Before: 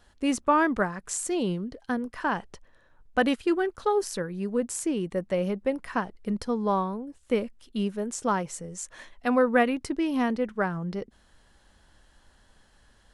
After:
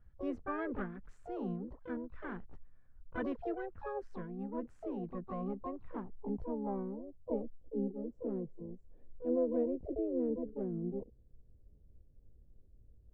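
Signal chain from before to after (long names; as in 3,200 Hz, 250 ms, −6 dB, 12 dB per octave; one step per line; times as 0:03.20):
guitar amp tone stack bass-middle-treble 10-0-1
pitch-shifted copies added +5 semitones −5 dB, +12 semitones −6 dB
low-pass filter sweep 1,400 Hz → 490 Hz, 0:05.17–0:07.88
level +5 dB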